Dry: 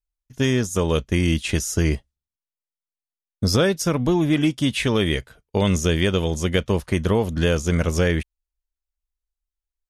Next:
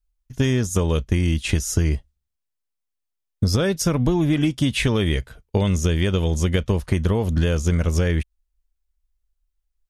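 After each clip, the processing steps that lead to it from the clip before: low shelf 100 Hz +12 dB; compressor, threshold -18 dBFS, peak gain reduction 8 dB; gain +2.5 dB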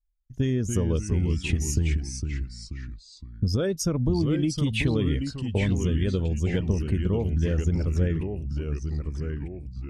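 formant sharpening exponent 1.5; echoes that change speed 0.24 s, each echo -2 st, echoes 3, each echo -6 dB; gain -5 dB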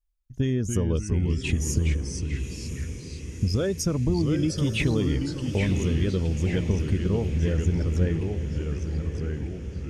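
diffused feedback echo 1 s, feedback 60%, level -11 dB

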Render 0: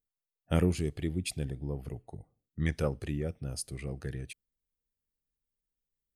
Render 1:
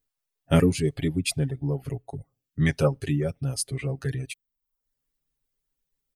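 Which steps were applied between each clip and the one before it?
reverb removal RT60 0.6 s; comb 7.3 ms, depth 84%; gain +6.5 dB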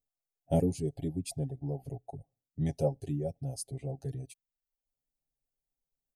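EQ curve 440 Hz 0 dB, 770 Hz +8 dB, 1200 Hz -24 dB, 6200 Hz -2 dB; gain -8.5 dB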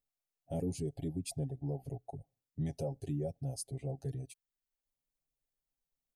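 limiter -26.5 dBFS, peak gain reduction 10.5 dB; gain -1.5 dB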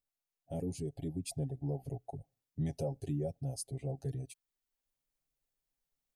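vocal rider within 5 dB 2 s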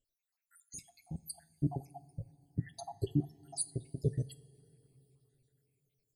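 random spectral dropouts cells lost 82%; two-slope reverb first 0.37 s, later 4 s, from -18 dB, DRR 13.5 dB; gain +9 dB

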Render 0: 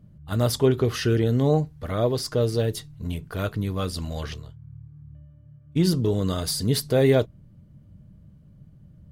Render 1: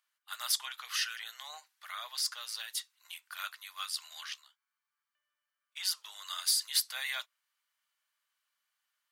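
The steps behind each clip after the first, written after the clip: Bessel high-pass 1800 Hz, order 8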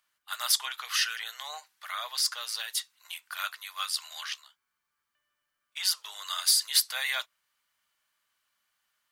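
low shelf 480 Hz +8.5 dB; gain +5.5 dB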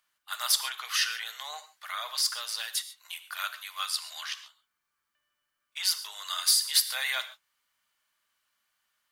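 non-linear reverb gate 0.16 s flat, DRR 11 dB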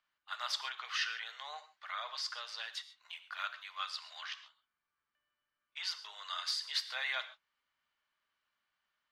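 air absorption 180 m; gain -3.5 dB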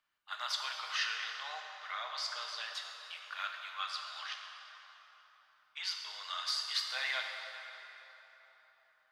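plate-style reverb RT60 4 s, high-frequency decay 0.65×, DRR 2.5 dB

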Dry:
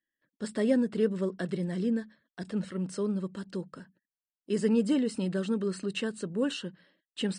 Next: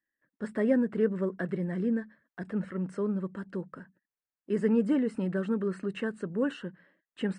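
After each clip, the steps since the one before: resonant high shelf 2700 Hz -13 dB, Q 1.5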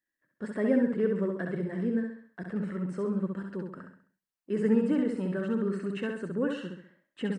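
feedback echo 66 ms, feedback 41%, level -4 dB; gain -1.5 dB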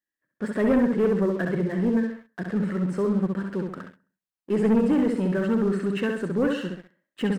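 sample leveller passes 2

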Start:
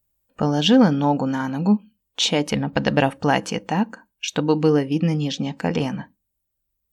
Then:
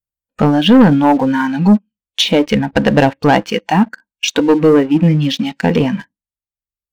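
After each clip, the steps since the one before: treble ducked by the level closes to 2200 Hz, closed at -17 dBFS; spectral noise reduction 16 dB; sample leveller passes 2; gain +3.5 dB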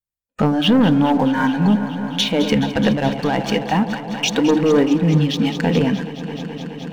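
limiter -9.5 dBFS, peak gain reduction 8 dB; on a send: echo with dull and thin repeats by turns 0.106 s, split 800 Hz, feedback 90%, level -11 dB; on the sum: noise-modulated level, depth 65%; gain +2 dB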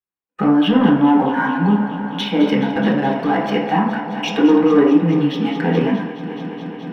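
reverb RT60 0.65 s, pre-delay 3 ms, DRR -3 dB; gain -11.5 dB

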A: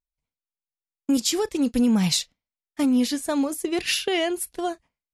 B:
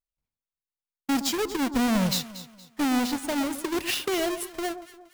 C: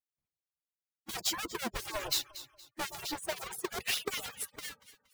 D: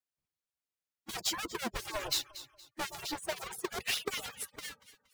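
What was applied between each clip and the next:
half-waves squared off; echo with dull and thin repeats by turns 0.117 s, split 1200 Hz, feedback 57%, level -10 dB; gain -7.5 dB
median-filter separation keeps percussive; gain -3 dB
high shelf 12000 Hz -5.5 dB

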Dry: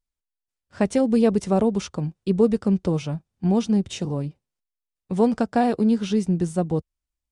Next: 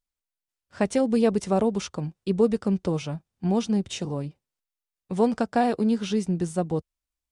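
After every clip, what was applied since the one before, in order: low shelf 370 Hz -5 dB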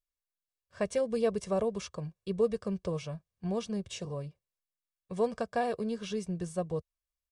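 comb 1.8 ms, depth 65%; gain -8.5 dB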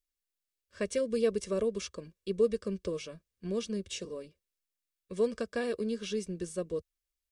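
fixed phaser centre 330 Hz, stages 4; gain +3 dB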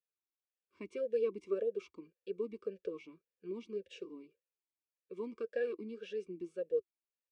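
vowel sweep e-u 1.8 Hz; gain +3.5 dB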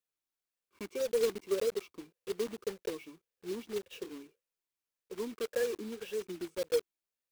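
block floating point 3-bit; gain +3 dB

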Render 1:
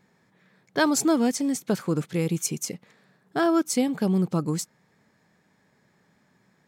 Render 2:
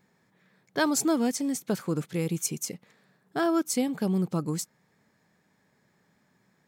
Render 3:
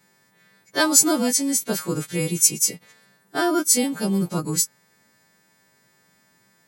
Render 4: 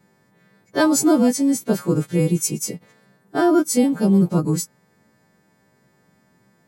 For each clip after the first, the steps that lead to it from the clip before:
high shelf 11000 Hz +6.5 dB; gain -3.5 dB
frequency quantiser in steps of 2 st; gain +4.5 dB
tilt shelf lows +7.5 dB, about 1200 Hz

